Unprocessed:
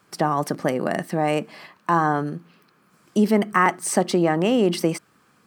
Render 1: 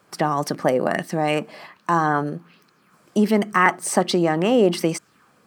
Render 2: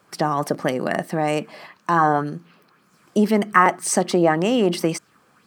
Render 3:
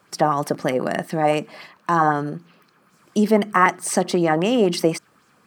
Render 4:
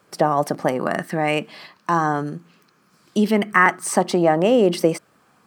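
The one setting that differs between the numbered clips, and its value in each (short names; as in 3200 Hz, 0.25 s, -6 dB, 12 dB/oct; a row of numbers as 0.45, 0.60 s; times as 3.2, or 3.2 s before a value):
LFO bell, rate: 1.3, 1.9, 3.9, 0.21 Hz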